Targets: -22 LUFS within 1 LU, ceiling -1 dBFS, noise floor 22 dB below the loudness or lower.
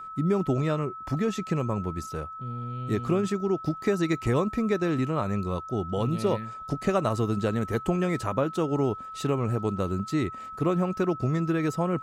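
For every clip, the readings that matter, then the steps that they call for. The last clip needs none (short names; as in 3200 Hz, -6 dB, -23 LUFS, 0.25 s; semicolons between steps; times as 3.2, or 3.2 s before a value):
steady tone 1300 Hz; tone level -37 dBFS; loudness -28.0 LUFS; peak -11.5 dBFS; loudness target -22.0 LUFS
-> notch 1300 Hz, Q 30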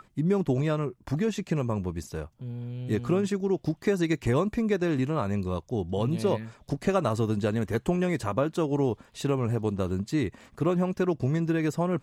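steady tone none; loudness -28.0 LUFS; peak -12.0 dBFS; loudness target -22.0 LUFS
-> gain +6 dB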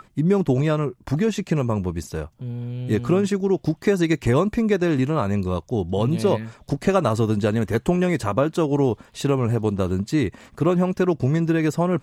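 loudness -22.0 LUFS; peak -6.0 dBFS; noise floor -54 dBFS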